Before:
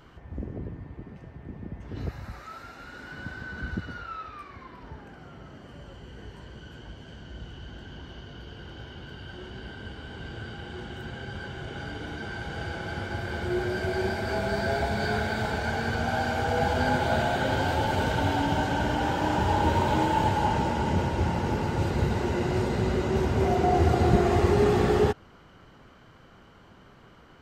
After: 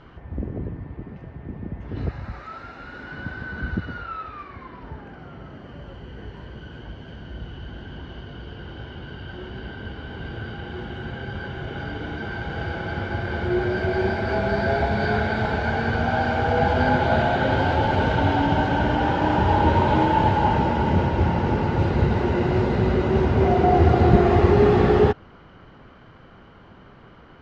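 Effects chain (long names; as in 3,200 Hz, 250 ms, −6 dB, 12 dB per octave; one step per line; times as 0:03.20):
high-frequency loss of the air 200 metres
level +6 dB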